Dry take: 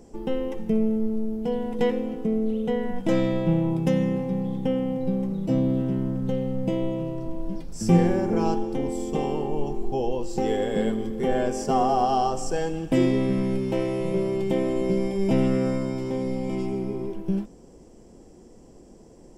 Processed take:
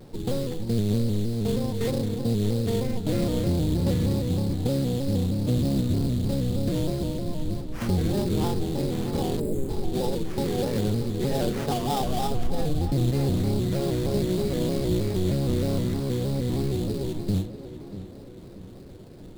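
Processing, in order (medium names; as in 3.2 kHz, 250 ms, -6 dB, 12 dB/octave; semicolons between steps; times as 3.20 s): octave divider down 1 oct, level +2 dB; 12.01–13.11 s: tilt EQ -2.5 dB/octave; in parallel at -2 dB: compression, threshold -31 dBFS, peak gain reduction 22 dB; on the sum: peak limiter -13 dBFS, peak gain reduction 12 dB; LFO notch sine 3.7 Hz 780–2500 Hz; sample-rate reducer 4.2 kHz, jitter 20%; 9.40–9.69 s: spectral selection erased 610–6700 Hz; tape echo 636 ms, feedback 56%, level -10 dB, low-pass 2.5 kHz; vibrato with a chosen wave square 3.2 Hz, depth 100 cents; trim -3.5 dB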